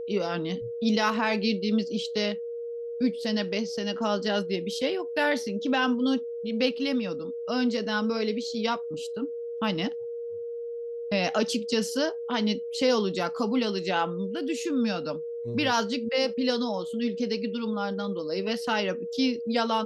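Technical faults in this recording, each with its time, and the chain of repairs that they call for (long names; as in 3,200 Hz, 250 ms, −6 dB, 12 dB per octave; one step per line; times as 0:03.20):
whistle 470 Hz −32 dBFS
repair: notch filter 470 Hz, Q 30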